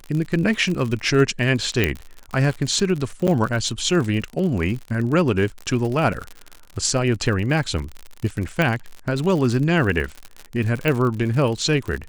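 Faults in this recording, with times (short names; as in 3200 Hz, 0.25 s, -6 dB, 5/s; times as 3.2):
crackle 62/s -26 dBFS
1.84 pop -5 dBFS
3.27–3.28 gap 7.8 ms
8.62 pop -8 dBFS
10.88 pop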